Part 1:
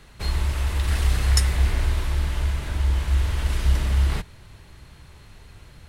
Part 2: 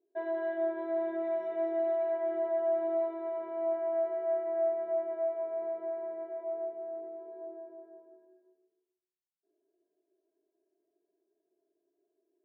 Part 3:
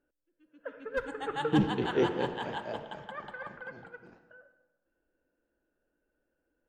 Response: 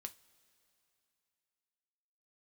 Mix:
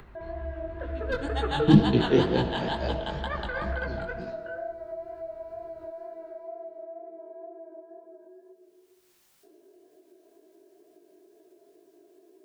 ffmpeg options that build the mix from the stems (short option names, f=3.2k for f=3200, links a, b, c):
-filter_complex "[0:a]lowpass=1.7k,volume=-12.5dB[a];[1:a]volume=0.5dB[b];[2:a]equalizer=f=4.2k:t=o:w=0.6:g=12.5,dynaudnorm=f=130:g=13:m=16dB,adelay=150,volume=2dB[c];[a][b][c]amix=inputs=3:normalize=0,acrossover=split=310[d][e];[e]acompressor=threshold=-38dB:ratio=1.5[f];[d][f]amix=inputs=2:normalize=0,flanger=delay=15.5:depth=7:speed=2.1,acompressor=mode=upward:threshold=-37dB:ratio=2.5"